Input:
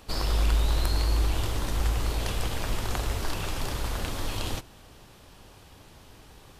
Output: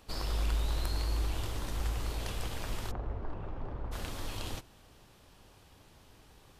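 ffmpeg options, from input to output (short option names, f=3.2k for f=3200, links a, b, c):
-filter_complex "[0:a]asplit=3[a][b][c];[a]afade=t=out:st=2.9:d=0.02[d];[b]lowpass=1k,afade=t=in:st=2.9:d=0.02,afade=t=out:st=3.91:d=0.02[e];[c]afade=t=in:st=3.91:d=0.02[f];[d][e][f]amix=inputs=3:normalize=0,volume=-7.5dB"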